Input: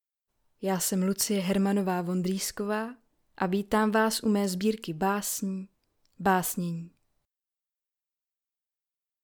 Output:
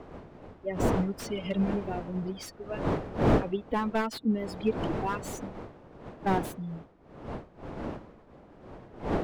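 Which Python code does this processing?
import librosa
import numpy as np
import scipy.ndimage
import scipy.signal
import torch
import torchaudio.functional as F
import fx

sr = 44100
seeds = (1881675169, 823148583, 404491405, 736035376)

y = fx.bin_expand(x, sr, power=3.0)
y = fx.dmg_wind(y, sr, seeds[0], corner_hz=530.0, level_db=-37.0)
y = fx.slew_limit(y, sr, full_power_hz=39.0)
y = F.gain(torch.from_numpy(y), 3.0).numpy()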